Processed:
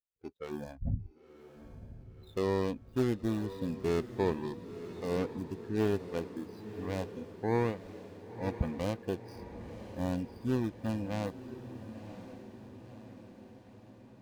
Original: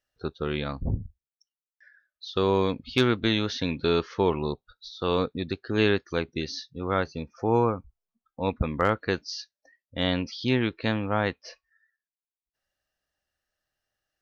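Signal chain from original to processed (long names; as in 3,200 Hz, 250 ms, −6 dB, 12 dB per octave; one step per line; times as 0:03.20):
running median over 41 samples
noise reduction from a noise print of the clip's start 16 dB
feedback delay with all-pass diffusion 1,011 ms, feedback 58%, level −12 dB
level −5 dB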